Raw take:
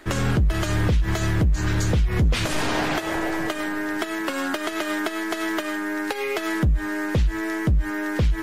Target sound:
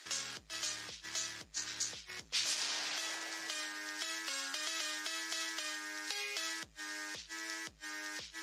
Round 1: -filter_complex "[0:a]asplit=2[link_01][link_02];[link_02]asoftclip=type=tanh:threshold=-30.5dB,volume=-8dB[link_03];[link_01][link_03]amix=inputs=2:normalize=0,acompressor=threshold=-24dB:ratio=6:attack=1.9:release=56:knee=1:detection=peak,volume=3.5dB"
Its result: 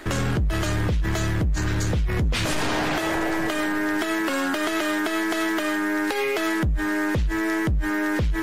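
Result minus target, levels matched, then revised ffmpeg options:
4,000 Hz band −9.5 dB
-filter_complex "[0:a]asplit=2[link_01][link_02];[link_02]asoftclip=type=tanh:threshold=-30.5dB,volume=-8dB[link_03];[link_01][link_03]amix=inputs=2:normalize=0,acompressor=threshold=-24dB:ratio=6:attack=1.9:release=56:knee=1:detection=peak,bandpass=frequency=5500:width_type=q:width=1.9:csg=0,volume=3.5dB"

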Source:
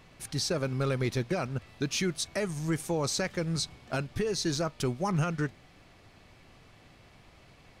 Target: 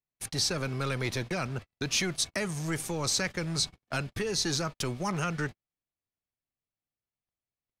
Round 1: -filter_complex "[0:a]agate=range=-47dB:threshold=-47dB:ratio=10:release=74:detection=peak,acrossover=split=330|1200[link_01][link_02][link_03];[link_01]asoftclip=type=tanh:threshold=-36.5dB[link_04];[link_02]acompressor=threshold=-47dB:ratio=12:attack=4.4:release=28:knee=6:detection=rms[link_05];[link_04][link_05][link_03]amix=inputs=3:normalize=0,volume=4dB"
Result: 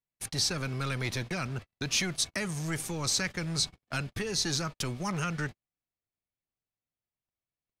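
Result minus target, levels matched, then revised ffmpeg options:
downward compressor: peak gain reduction +7.5 dB
-filter_complex "[0:a]agate=range=-47dB:threshold=-47dB:ratio=10:release=74:detection=peak,acrossover=split=330|1200[link_01][link_02][link_03];[link_01]asoftclip=type=tanh:threshold=-36.5dB[link_04];[link_02]acompressor=threshold=-39dB:ratio=12:attack=4.4:release=28:knee=6:detection=rms[link_05];[link_04][link_05][link_03]amix=inputs=3:normalize=0,volume=4dB"

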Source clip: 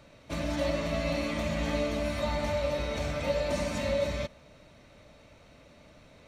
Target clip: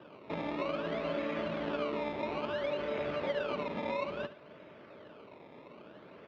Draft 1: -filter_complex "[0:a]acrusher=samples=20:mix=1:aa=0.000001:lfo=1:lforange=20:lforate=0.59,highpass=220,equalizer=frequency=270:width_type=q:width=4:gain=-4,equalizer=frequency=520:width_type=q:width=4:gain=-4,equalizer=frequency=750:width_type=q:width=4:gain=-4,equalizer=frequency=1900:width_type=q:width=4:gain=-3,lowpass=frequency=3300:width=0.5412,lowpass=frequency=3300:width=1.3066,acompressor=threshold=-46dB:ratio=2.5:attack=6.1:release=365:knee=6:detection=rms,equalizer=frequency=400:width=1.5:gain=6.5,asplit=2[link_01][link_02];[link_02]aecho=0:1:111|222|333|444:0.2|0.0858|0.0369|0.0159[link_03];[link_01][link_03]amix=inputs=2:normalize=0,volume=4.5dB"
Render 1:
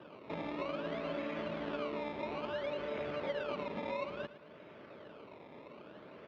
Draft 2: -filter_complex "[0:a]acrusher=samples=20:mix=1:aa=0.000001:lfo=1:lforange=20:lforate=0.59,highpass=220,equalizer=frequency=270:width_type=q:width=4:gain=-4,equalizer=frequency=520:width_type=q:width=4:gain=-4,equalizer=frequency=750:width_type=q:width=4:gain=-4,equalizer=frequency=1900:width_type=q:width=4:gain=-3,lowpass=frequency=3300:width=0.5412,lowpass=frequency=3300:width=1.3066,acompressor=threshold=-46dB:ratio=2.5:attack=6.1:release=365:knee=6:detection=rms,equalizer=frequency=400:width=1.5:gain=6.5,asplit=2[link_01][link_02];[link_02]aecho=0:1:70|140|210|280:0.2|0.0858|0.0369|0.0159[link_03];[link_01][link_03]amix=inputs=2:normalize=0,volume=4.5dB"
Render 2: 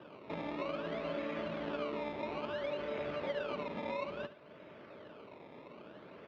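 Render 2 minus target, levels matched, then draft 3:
downward compressor: peak gain reduction +3.5 dB
-filter_complex "[0:a]acrusher=samples=20:mix=1:aa=0.000001:lfo=1:lforange=20:lforate=0.59,highpass=220,equalizer=frequency=270:width_type=q:width=4:gain=-4,equalizer=frequency=520:width_type=q:width=4:gain=-4,equalizer=frequency=750:width_type=q:width=4:gain=-4,equalizer=frequency=1900:width_type=q:width=4:gain=-3,lowpass=frequency=3300:width=0.5412,lowpass=frequency=3300:width=1.3066,acompressor=threshold=-40dB:ratio=2.5:attack=6.1:release=365:knee=6:detection=rms,equalizer=frequency=400:width=1.5:gain=6.5,asplit=2[link_01][link_02];[link_02]aecho=0:1:70|140|210|280:0.2|0.0858|0.0369|0.0159[link_03];[link_01][link_03]amix=inputs=2:normalize=0,volume=4.5dB"

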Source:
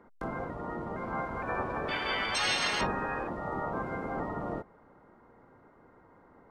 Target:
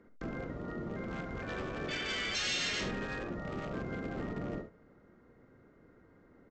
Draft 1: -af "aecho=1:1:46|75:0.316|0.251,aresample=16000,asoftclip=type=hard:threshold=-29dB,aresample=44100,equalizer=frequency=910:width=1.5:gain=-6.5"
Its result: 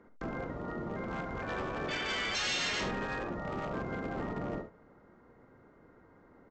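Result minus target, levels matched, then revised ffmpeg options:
1,000 Hz band +4.0 dB
-af "aecho=1:1:46|75:0.316|0.251,aresample=16000,asoftclip=type=hard:threshold=-29dB,aresample=44100,equalizer=frequency=910:width=1.5:gain=-15"

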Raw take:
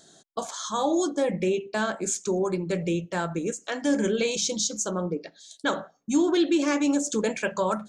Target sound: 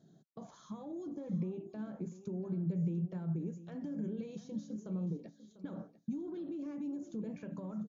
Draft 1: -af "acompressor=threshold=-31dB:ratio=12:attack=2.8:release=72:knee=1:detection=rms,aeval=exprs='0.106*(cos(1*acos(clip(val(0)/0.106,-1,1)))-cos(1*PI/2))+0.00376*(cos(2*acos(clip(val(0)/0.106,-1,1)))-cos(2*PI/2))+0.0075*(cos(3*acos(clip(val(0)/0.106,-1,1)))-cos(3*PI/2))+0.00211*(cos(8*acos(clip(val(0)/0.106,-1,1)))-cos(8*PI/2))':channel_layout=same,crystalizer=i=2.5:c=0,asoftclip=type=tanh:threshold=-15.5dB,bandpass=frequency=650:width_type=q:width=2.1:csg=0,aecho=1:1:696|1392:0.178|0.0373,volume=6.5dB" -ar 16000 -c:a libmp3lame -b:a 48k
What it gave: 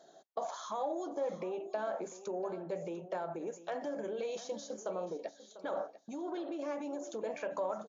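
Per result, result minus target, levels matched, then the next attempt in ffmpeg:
125 Hz band −17.5 dB; soft clipping: distortion −11 dB
-af "acompressor=threshold=-31dB:ratio=12:attack=2.8:release=72:knee=1:detection=rms,aeval=exprs='0.106*(cos(1*acos(clip(val(0)/0.106,-1,1)))-cos(1*PI/2))+0.00376*(cos(2*acos(clip(val(0)/0.106,-1,1)))-cos(2*PI/2))+0.0075*(cos(3*acos(clip(val(0)/0.106,-1,1)))-cos(3*PI/2))+0.00211*(cos(8*acos(clip(val(0)/0.106,-1,1)))-cos(8*PI/2))':channel_layout=same,crystalizer=i=2.5:c=0,asoftclip=type=tanh:threshold=-15.5dB,bandpass=frequency=160:width_type=q:width=2.1:csg=0,aecho=1:1:696|1392:0.178|0.0373,volume=6.5dB" -ar 16000 -c:a libmp3lame -b:a 48k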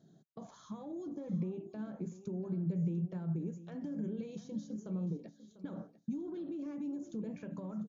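soft clipping: distortion −11 dB
-af "acompressor=threshold=-31dB:ratio=12:attack=2.8:release=72:knee=1:detection=rms,aeval=exprs='0.106*(cos(1*acos(clip(val(0)/0.106,-1,1)))-cos(1*PI/2))+0.00376*(cos(2*acos(clip(val(0)/0.106,-1,1)))-cos(2*PI/2))+0.0075*(cos(3*acos(clip(val(0)/0.106,-1,1)))-cos(3*PI/2))+0.00211*(cos(8*acos(clip(val(0)/0.106,-1,1)))-cos(8*PI/2))':channel_layout=same,crystalizer=i=2.5:c=0,asoftclip=type=tanh:threshold=-23dB,bandpass=frequency=160:width_type=q:width=2.1:csg=0,aecho=1:1:696|1392:0.178|0.0373,volume=6.5dB" -ar 16000 -c:a libmp3lame -b:a 48k

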